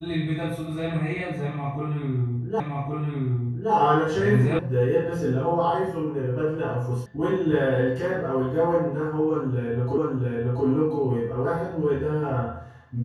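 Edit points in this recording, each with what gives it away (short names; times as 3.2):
2.6 repeat of the last 1.12 s
4.59 sound cut off
7.06 sound cut off
9.98 repeat of the last 0.68 s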